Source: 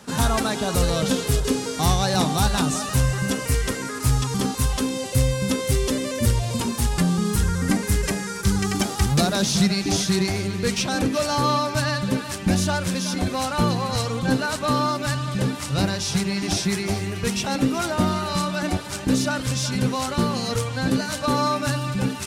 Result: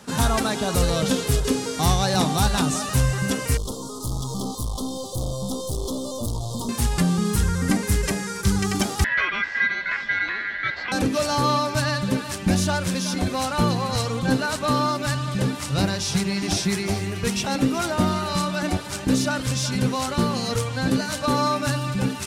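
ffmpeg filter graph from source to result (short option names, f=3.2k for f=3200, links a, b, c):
-filter_complex "[0:a]asettb=1/sr,asplit=3[a][b][c];[a]atrim=end=3.574[d];[b]atrim=start=3.57:end=6.69,asetpts=PTS-STARTPTS,afade=t=in:d=0.004:c=qsin,afade=t=out:st=3.116:d=0.004:c=qsin,aeval=exprs='(tanh(15.8*val(0)+0.5)-tanh(0.5))/15.8':c=same,asuperstop=centerf=2000:order=12:qfactor=0.98[e];[c]atrim=start=6.686[f];[d][e]acrossfade=d=0.004:c1=hsin:c2=qsin[g];[g][f]acrossfade=d=0.004:c1=qsin:c2=hsin,asettb=1/sr,asplit=3[h][i][j];[h]atrim=end=9.044[k];[i]atrim=start=9.04:end=10.92,asetpts=PTS-STARTPTS,afade=t=in:d=0.004:c=qsin,afade=t=out:st=1.876:d=0.004:c=qsin,lowpass=f=2.3k:w=0.5412,lowpass=f=2.3k:w=1.3066,aeval=exprs='val(0)*sin(2*PI*1800*n/s)':c=same[l];[j]atrim=start=10.916[m];[k][l]acrossfade=d=0.004:c1=hsin:c2=qsin[n];[n][m]acrossfade=d=0.004:c1=qsin:c2=hsin"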